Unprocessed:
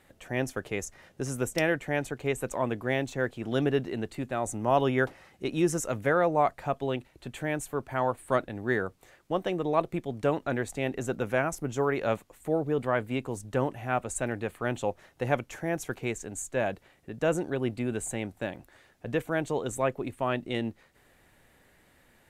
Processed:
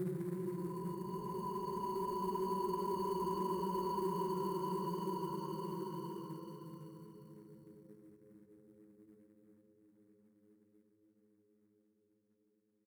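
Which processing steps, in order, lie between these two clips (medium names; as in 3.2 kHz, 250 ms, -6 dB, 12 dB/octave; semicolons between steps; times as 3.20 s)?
expander on every frequency bin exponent 3; expander -58 dBFS; de-hum 60.6 Hz, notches 5; Paulstretch 48×, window 0.25 s, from 18.32 s; harmonic-percussive split harmonic +7 dB; compression 2:1, threshold -52 dBFS, peak gain reduction 6.5 dB; short-mantissa float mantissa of 2-bit; high-order bell 2.4 kHz -14 dB; doubling 37 ms -12.5 dB; speed mistake 45 rpm record played at 78 rpm; trim +14.5 dB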